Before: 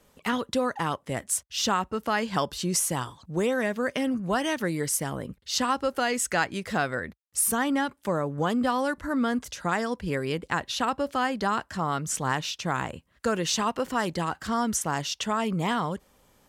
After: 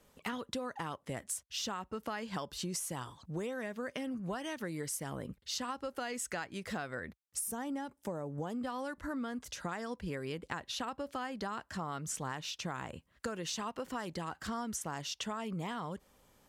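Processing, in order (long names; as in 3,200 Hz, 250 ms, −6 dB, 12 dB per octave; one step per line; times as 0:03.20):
gain on a spectral selection 0:07.40–0:08.54, 990–4,900 Hz −6 dB
downward compressor, threshold −31 dBFS, peak gain reduction 11.5 dB
level −4.5 dB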